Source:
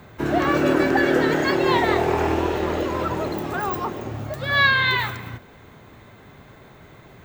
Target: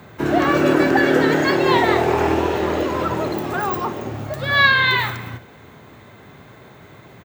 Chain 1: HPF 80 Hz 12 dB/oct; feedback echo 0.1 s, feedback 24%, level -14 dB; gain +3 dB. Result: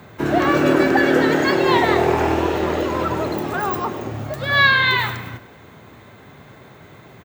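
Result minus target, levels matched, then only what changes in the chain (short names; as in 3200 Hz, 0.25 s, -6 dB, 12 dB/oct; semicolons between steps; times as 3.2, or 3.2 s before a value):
echo 41 ms late
change: feedback echo 59 ms, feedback 24%, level -14 dB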